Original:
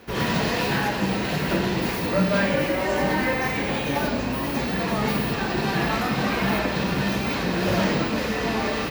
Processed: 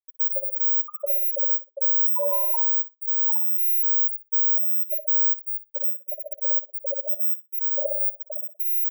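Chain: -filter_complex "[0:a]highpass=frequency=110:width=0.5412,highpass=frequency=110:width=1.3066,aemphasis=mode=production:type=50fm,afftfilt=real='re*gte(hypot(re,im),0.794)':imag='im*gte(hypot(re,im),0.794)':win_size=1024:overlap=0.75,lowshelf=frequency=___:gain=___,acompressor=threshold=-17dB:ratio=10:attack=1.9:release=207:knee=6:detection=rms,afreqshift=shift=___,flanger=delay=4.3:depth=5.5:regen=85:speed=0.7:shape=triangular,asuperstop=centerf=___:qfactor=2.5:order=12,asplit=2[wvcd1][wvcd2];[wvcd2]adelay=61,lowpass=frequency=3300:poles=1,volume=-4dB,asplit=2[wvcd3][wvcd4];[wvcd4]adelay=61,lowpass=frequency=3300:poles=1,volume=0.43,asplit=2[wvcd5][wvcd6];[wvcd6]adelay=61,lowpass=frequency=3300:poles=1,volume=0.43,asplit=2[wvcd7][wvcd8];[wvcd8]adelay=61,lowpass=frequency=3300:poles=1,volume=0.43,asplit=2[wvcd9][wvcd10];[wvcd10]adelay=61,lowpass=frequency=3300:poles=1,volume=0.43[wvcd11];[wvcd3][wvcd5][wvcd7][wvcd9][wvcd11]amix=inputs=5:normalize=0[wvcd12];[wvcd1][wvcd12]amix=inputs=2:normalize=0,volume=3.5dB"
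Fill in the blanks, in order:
220, 11.5, 390, 2200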